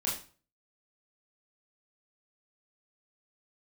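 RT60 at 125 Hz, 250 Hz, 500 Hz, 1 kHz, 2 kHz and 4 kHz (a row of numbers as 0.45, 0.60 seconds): 0.50, 0.45, 0.40, 0.40, 0.35, 0.35 seconds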